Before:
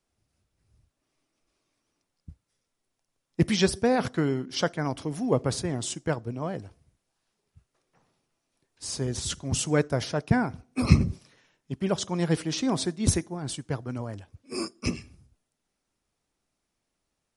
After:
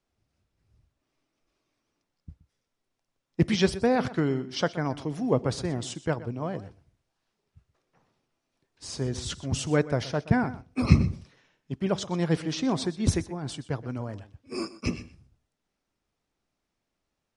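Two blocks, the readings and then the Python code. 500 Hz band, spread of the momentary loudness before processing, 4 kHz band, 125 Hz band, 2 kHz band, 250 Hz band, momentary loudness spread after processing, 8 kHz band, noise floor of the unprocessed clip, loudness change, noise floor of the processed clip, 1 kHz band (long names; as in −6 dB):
0.0 dB, 12 LU, −2.0 dB, 0.0 dB, −0.5 dB, 0.0 dB, 13 LU, −6.0 dB, −81 dBFS, −0.5 dB, −82 dBFS, 0.0 dB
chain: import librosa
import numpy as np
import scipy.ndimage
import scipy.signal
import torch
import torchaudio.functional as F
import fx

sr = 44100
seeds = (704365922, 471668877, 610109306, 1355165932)

y = fx.air_absorb(x, sr, metres=67.0)
y = y + 10.0 ** (-16.5 / 20.0) * np.pad(y, (int(124 * sr / 1000.0), 0))[:len(y)]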